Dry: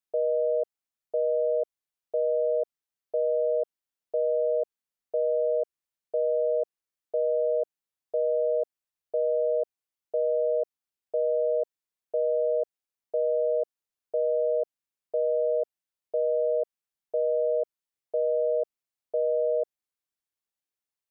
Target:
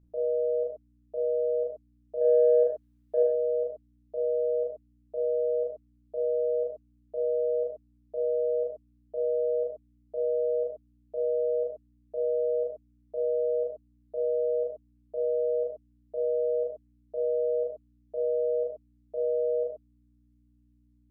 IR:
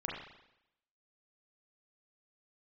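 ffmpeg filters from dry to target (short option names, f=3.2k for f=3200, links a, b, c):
-filter_complex "[0:a]asettb=1/sr,asplit=3[a][b][c];[a]atrim=end=2.214[d];[b]atrim=start=2.21:end=3.23,asetpts=PTS-STARTPTS,afade=t=in:d=0.004:c=qsin,afade=t=out:st=1.016:d=0.004:c=qsin,acontrast=81[e];[c]atrim=start=3.226[f];[d][e]acrossfade=d=0.004:c1=hsin:c2=qsin[g];[g][f]acrossfade=d=0.004:c1=qsin:c2=hsin,aeval=exprs='val(0)+0.00224*(sin(2*PI*60*n/s)+sin(2*PI*2*60*n/s)/2+sin(2*PI*3*60*n/s)/3+sin(2*PI*4*60*n/s)/4+sin(2*PI*5*60*n/s)/5)':c=same[h];[1:a]atrim=start_sample=2205,atrim=end_sample=6174[i];[h][i]afir=irnorm=-1:irlink=0,volume=-6.5dB"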